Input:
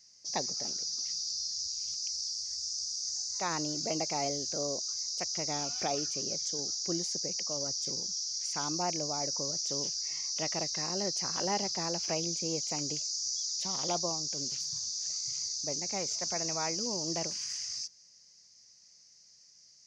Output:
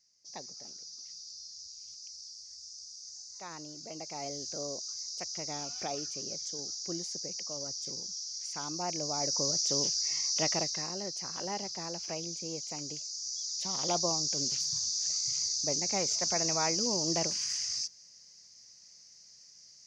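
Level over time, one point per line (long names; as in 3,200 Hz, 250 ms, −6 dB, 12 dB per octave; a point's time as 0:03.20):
0:03.89 −11 dB
0:04.43 −4 dB
0:08.74 −4 dB
0:09.44 +4 dB
0:10.50 +4 dB
0:11.00 −5 dB
0:13.11 −5 dB
0:14.17 +3.5 dB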